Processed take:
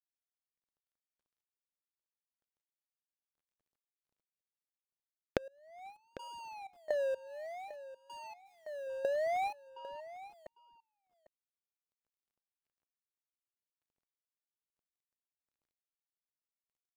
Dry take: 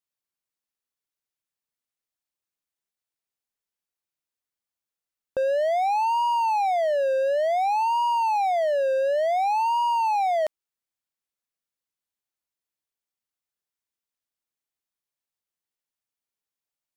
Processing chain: median filter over 41 samples; recorder AGC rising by 38 dB/s; 9.69–10.24 air absorption 280 m; gate with hold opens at -25 dBFS; 7.27–8.87 low shelf 410 Hz -5 dB; in parallel at -3.5 dB: requantised 8-bit, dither none; on the sum: step gate "..xx.x....x." 63 bpm -24 dB; compressor 20:1, threshold -37 dBFS, peak gain reduction 35.5 dB; on a send: echo 0.8 s -15.5 dB; on the sum: gain +5 dB

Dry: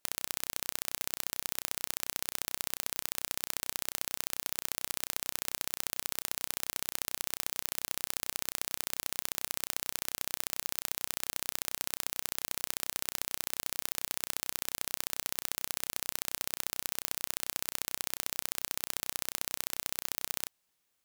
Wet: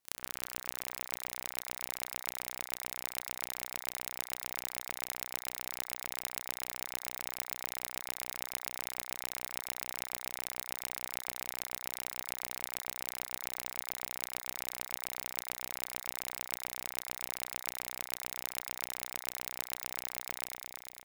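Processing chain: ring modulator 200 Hz; echo with dull and thin repeats by turns 0.112 s, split 2100 Hz, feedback 81%, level -3 dB; gain -2 dB

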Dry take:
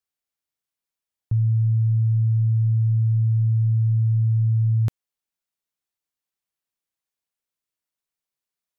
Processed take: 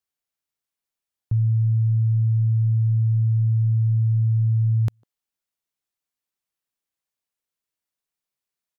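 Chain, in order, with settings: speakerphone echo 0.15 s, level -24 dB

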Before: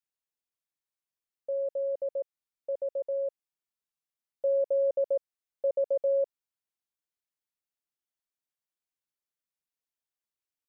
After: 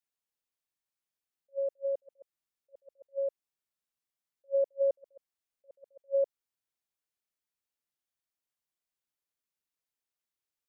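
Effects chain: attack slew limiter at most 550 dB/s

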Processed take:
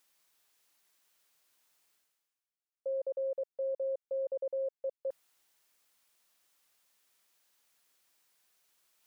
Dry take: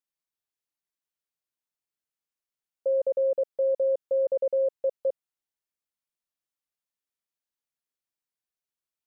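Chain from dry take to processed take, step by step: low shelf 310 Hz -11 dB; reverse; upward compressor, threshold -44 dBFS; reverse; gain -7 dB

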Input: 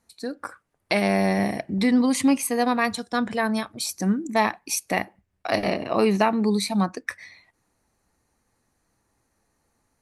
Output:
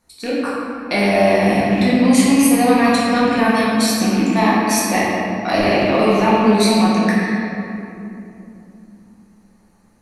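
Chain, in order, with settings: rattling part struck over -34 dBFS, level -24 dBFS; in parallel at -1 dB: negative-ratio compressor -26 dBFS, ratio -1; on the sum: shoebox room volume 120 m³, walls hard, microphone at 0.97 m; gain -4 dB

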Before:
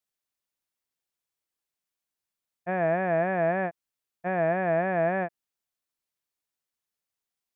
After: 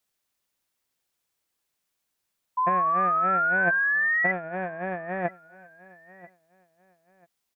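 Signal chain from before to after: negative-ratio compressor -31 dBFS, ratio -0.5; painted sound rise, 2.57–4.32, 1000–2000 Hz -25 dBFS; feedback echo 0.989 s, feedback 29%, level -21 dB; gain +1.5 dB

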